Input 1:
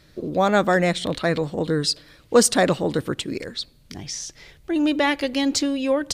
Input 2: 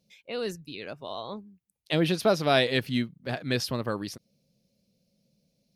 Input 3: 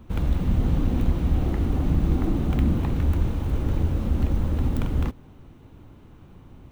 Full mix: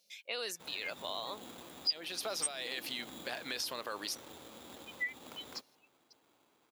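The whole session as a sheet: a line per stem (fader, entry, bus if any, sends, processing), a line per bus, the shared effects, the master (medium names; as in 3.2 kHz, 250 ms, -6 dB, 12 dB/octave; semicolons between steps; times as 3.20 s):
-1.0 dB, 0.00 s, no send, Chebyshev high-pass 2.1 kHz, order 4; spectral contrast expander 4:1
-1.0 dB, 0.00 s, no send, treble shelf 2 kHz +9 dB; peak limiter -21 dBFS, peak gain reduction 17 dB
-11.5 dB, 0.50 s, no send, sample-rate reducer 3.6 kHz, jitter 0%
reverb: none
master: high-pass 570 Hz 12 dB/octave; compression 2.5:1, threshold -36 dBFS, peak gain reduction 15 dB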